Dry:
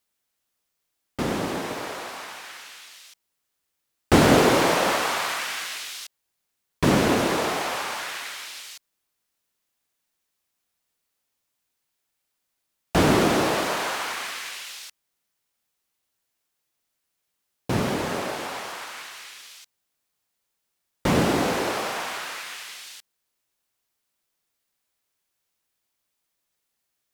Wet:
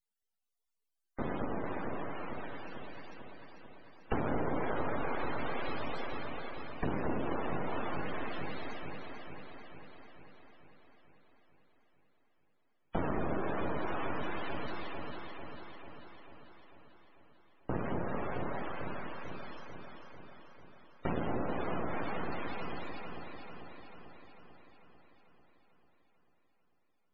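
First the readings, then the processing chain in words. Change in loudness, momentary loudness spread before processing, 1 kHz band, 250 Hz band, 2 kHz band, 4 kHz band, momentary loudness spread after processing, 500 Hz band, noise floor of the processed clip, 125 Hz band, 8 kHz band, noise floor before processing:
-15.0 dB, 20 LU, -11.5 dB, -12.5 dB, -14.0 dB, -21.5 dB, 19 LU, -12.0 dB, -74 dBFS, -12.0 dB, under -40 dB, -79 dBFS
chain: half-wave rectifier; on a send: echo with dull and thin repeats by turns 0.222 s, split 960 Hz, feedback 78%, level -3 dB; on the sum: loudest bins only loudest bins 64; compressor 4:1, threshold -25 dBFS, peak gain reduction 10.5 dB; gain -4 dB

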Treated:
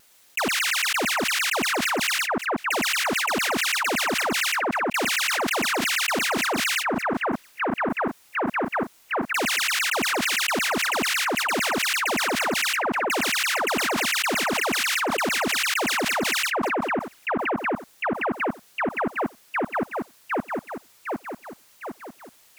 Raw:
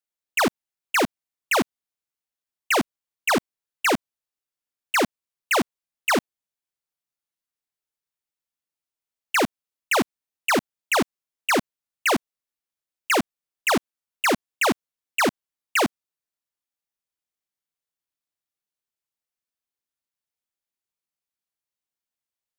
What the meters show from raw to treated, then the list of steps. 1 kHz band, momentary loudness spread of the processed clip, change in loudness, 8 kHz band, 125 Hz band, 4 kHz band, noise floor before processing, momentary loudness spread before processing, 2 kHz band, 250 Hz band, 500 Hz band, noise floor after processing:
+2.5 dB, 8 LU, +1.0 dB, +6.0 dB, +2.0 dB, +7.0 dB, under -85 dBFS, 6 LU, +4.5 dB, +1.0 dB, +1.0 dB, -56 dBFS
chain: low shelf 370 Hz -6 dB; on a send: split-band echo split 1600 Hz, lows 0.757 s, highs 0.113 s, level -6 dB; on the sum: wow and flutter 29 cents; fast leveller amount 100%; gain -6 dB

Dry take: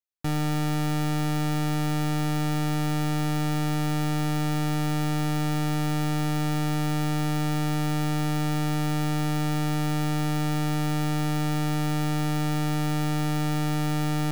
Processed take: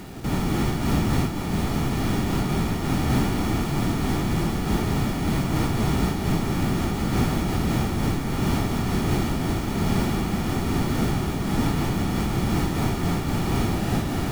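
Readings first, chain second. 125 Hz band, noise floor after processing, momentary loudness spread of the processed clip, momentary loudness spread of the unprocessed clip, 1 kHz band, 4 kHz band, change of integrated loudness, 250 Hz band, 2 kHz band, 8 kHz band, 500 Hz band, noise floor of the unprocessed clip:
+1.0 dB, -27 dBFS, 2 LU, 0 LU, +1.0 dB, +1.5 dB, +2.0 dB, +2.5 dB, +1.5 dB, +1.5 dB, +5.0 dB, -25 dBFS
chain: reverse echo 0.562 s -12.5 dB; whisperiser; in parallel at -3.5 dB: bit-crush 7-bit; on the sum: noise-modulated level, depth 65%

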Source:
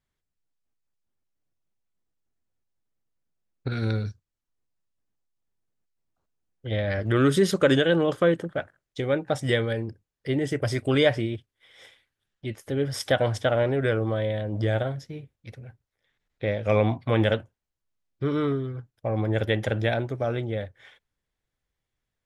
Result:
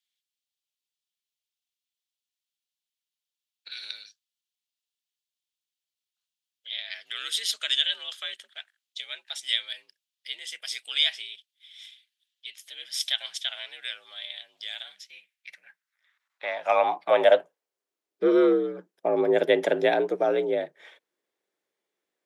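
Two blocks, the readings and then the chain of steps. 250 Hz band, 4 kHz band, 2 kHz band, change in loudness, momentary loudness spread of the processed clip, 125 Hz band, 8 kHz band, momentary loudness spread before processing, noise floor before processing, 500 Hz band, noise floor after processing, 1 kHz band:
-5.5 dB, +7.5 dB, -2.5 dB, -0.5 dB, 19 LU, under -25 dB, +2.5 dB, 16 LU, -85 dBFS, -1.0 dB, under -85 dBFS, +2.5 dB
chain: high-pass sweep 3200 Hz -> 320 Hz, 14.86–17.93; frequency shift +58 Hz; gain +1 dB

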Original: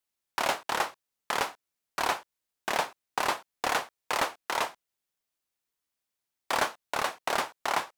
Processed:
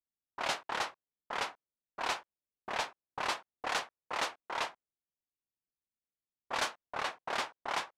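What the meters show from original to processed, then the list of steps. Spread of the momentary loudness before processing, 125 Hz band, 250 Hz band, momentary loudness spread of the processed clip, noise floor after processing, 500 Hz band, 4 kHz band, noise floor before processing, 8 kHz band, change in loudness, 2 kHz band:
5 LU, -7.0 dB, -8.0 dB, 5 LU, under -85 dBFS, -7.5 dB, -4.0 dB, under -85 dBFS, -7.0 dB, -5.5 dB, -5.5 dB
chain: soft clip -21.5 dBFS, distortion -13 dB; low-pass opened by the level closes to 330 Hz, open at -22.5 dBFS; pre-emphasis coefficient 0.8; gain +8.5 dB

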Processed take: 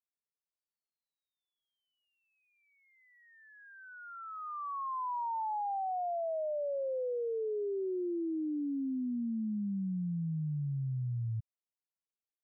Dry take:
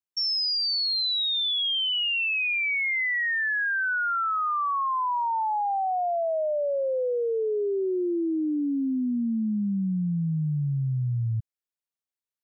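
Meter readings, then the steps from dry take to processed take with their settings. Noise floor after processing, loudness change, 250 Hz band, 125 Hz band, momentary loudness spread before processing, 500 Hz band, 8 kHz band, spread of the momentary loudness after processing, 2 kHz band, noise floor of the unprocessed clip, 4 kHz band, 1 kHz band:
under -85 dBFS, -10.5 dB, -8.5 dB, -8.5 dB, 4 LU, -8.5 dB, n/a, 8 LU, -30.5 dB, under -85 dBFS, under -40 dB, -10.0 dB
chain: steep low-pass 1100 Hz; gain -8.5 dB

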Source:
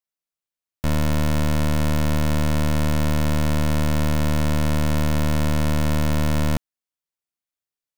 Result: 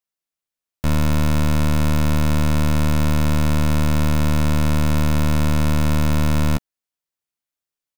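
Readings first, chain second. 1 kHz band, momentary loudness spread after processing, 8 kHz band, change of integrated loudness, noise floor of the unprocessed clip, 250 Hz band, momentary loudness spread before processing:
+2.0 dB, 1 LU, +1.5 dB, +2.5 dB, under -85 dBFS, +2.5 dB, 0 LU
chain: doubler 14 ms -13 dB; gain +1.5 dB

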